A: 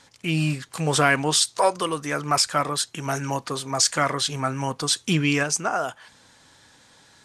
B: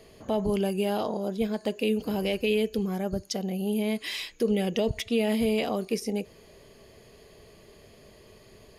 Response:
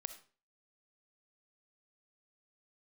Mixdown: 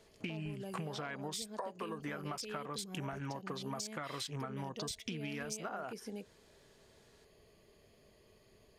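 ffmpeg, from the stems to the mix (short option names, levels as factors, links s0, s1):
-filter_complex "[0:a]acompressor=threshold=0.0316:ratio=16,afwtdn=0.00708,volume=1.06[s0];[1:a]acompressor=threshold=0.0282:ratio=1.5,volume=0.251[s1];[s0][s1]amix=inputs=2:normalize=0,acompressor=threshold=0.0126:ratio=6"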